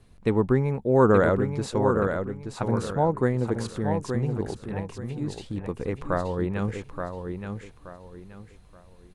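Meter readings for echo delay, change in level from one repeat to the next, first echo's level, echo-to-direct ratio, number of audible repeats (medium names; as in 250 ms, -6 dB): 876 ms, -10.5 dB, -6.5 dB, -6.0 dB, 3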